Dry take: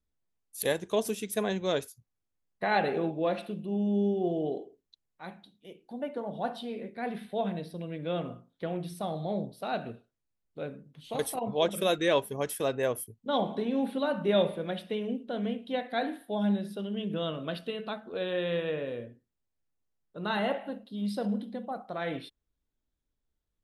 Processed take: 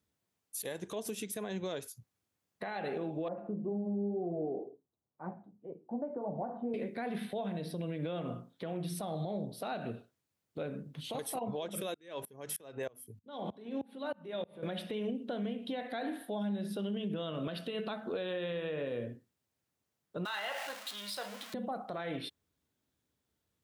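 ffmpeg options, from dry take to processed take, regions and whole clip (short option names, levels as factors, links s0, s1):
-filter_complex "[0:a]asettb=1/sr,asplit=3[s0][s1][s2];[s0]atrim=end=3.284[s3];[s1]atrim=start=3.28:end=6.74,asetpts=PTS-STARTPTS,afade=t=in:d=0.004:c=qsin,afade=t=out:st=3.456:d=0.004:c=qsin,lowpass=f=1100:w=0.5412,lowpass=f=1100:w=1.3066,flanger=delay=6.2:depth=4.1:regen=-35:speed=2:shape=triangular[s4];[s2]atrim=start=6.736[s5];[s3][s4]acrossfade=d=0.004:c1=hsin:c2=qsin[s6];[s6][s5]acrossfade=d=0.004:c1=qsin:c2=hsin,asettb=1/sr,asplit=3[s7][s8][s9];[s7]atrim=end=11.944[s10];[s8]atrim=start=11.94:end=14.63,asetpts=PTS-STARTPTS,afade=t=in:d=0.004:c=qsin,afade=t=out:st=2.686:d=0.004:c=qsin,bandreject=f=50:t=h:w=6,bandreject=f=100:t=h:w=6,bandreject=f=150:t=h:w=6,bandreject=f=200:t=h:w=6,bandreject=f=250:t=h:w=6,acompressor=threshold=0.0141:ratio=3:attack=3.2:release=140:knee=1:detection=peak,aeval=exprs='val(0)*pow(10,-29*if(lt(mod(-3.2*n/s,1),2*abs(-3.2)/1000),1-mod(-3.2*n/s,1)/(2*abs(-3.2)/1000),(mod(-3.2*n/s,1)-2*abs(-3.2)/1000)/(1-2*abs(-3.2)/1000))/20)':c=same[s11];[s9]atrim=start=14.626[s12];[s10][s11]acrossfade=d=0.004:c1=hsin:c2=qsin[s13];[s13][s12]acrossfade=d=0.004:c1=qsin:c2=hsin,asettb=1/sr,asplit=3[s14][s15][s16];[s14]atrim=end=20.254[s17];[s15]atrim=start=20.25:end=21.54,asetpts=PTS-STARTPTS,afade=t=in:d=0.004:c=qsin,afade=t=out:st=1.286:d=0.004:c=qsin,aeval=exprs='val(0)+0.5*0.00841*sgn(val(0))':c=same,highpass=1200,asplit=2[s18][s19];[s19]adelay=20,volume=0.237[s20];[s18][s20]amix=inputs=2:normalize=0,atrim=end_sample=56889[s21];[s16]atrim=start=21.536[s22];[s17][s21]acrossfade=d=0.004:c1=hsin:c2=qsin[s23];[s23][s22]acrossfade=d=0.004:c1=qsin:c2=hsin,highpass=f=81:w=0.5412,highpass=f=81:w=1.3066,acompressor=threshold=0.0141:ratio=6,alimiter=level_in=3.76:limit=0.0631:level=0:latency=1:release=109,volume=0.266,volume=2.24"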